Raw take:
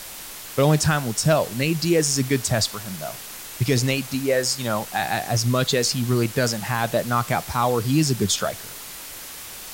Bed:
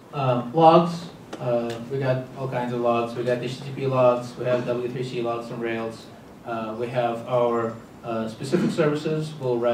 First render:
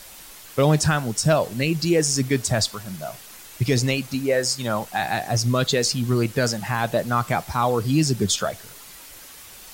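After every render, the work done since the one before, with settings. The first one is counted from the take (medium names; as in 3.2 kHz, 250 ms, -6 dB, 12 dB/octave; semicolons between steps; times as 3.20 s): noise reduction 7 dB, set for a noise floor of -37 dBFS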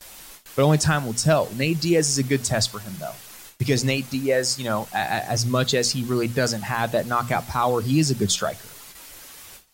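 gate with hold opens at -32 dBFS; hum notches 60/120/180/240 Hz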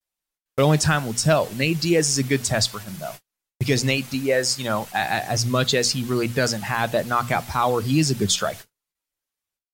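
gate -36 dBFS, range -44 dB; dynamic bell 2.6 kHz, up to +3 dB, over -40 dBFS, Q 0.73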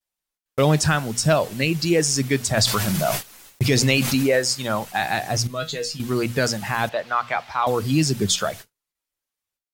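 2.57–4.39 s: level flattener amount 70%; 5.47–6.00 s: feedback comb 160 Hz, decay 0.18 s, mix 90%; 6.89–7.67 s: three-band isolator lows -17 dB, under 520 Hz, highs -22 dB, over 4.6 kHz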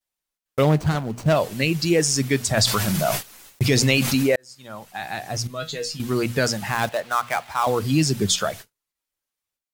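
0.63–1.36 s: median filter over 25 samples; 4.36–6.05 s: fade in; 6.68–7.84 s: dead-time distortion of 0.065 ms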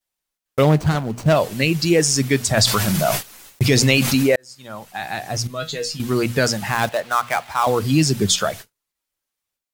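trim +3 dB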